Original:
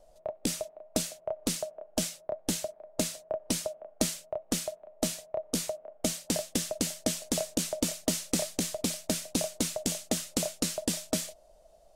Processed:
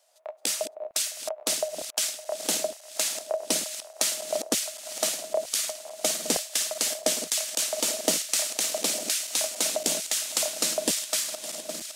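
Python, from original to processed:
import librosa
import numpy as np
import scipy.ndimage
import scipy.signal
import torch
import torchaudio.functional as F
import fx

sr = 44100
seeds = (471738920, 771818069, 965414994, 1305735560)

y = fx.reverse_delay_fb(x, sr, ms=281, feedback_pct=84, wet_db=-12.0)
y = fx.filter_lfo_highpass(y, sr, shape='saw_down', hz=1.1, low_hz=350.0, high_hz=1800.0, q=0.8)
y = F.gain(torch.from_numpy(y), 6.5).numpy()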